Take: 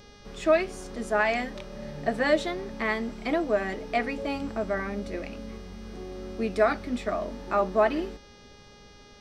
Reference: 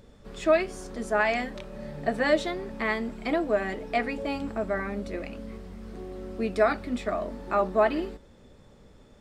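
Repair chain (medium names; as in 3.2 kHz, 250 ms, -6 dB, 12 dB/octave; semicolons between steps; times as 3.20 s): de-hum 410.7 Hz, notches 15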